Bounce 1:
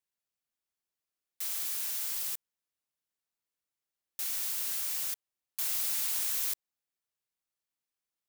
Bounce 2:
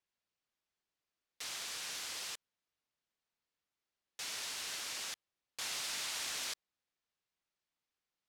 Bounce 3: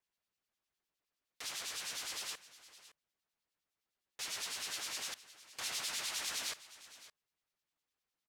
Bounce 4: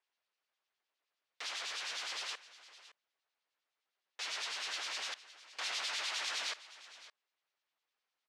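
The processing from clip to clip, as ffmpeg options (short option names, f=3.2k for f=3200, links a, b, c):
-af "lowpass=5.2k,volume=3dB"
-filter_complex "[0:a]acrossover=split=2300[a][b];[a]aeval=exprs='val(0)*(1-0.7/2+0.7/2*cos(2*PI*9.8*n/s))':c=same[c];[b]aeval=exprs='val(0)*(1-0.7/2-0.7/2*cos(2*PI*9.8*n/s))':c=same[d];[c][d]amix=inputs=2:normalize=0,aecho=1:1:563:0.141,volume=3.5dB"
-af "highpass=510,lowpass=4.5k,volume=4.5dB"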